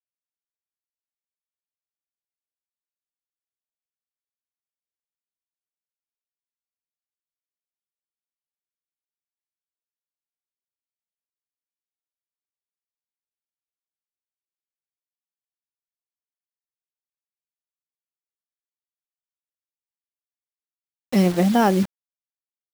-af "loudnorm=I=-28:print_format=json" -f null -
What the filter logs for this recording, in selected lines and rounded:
"input_i" : "-20.0",
"input_tp" : "-4.7",
"input_lra" : "0.0",
"input_thresh" : "-30.0",